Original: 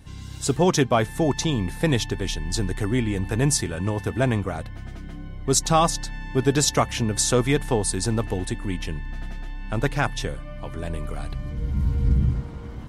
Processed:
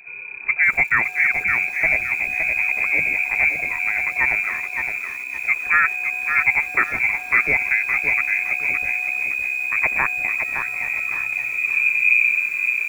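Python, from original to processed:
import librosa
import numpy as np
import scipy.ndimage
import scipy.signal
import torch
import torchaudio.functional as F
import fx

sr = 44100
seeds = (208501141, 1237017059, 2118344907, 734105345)

y = fx.freq_invert(x, sr, carrier_hz=2500)
y = fx.echo_crushed(y, sr, ms=565, feedback_pct=35, bits=7, wet_db=-6)
y = y * 10.0 ** (1.5 / 20.0)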